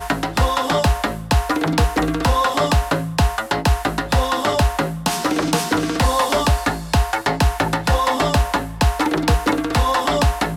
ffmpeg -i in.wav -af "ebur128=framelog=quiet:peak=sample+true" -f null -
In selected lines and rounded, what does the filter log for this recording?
Integrated loudness:
  I:         -19.0 LUFS
  Threshold: -29.0 LUFS
Loudness range:
  LRA:         0.7 LU
  Threshold: -39.1 LUFS
  LRA low:   -19.4 LUFS
  LRA high:  -18.8 LUFS
Sample peak:
  Peak:       -6.3 dBFS
True peak:
  Peak:       -6.3 dBFS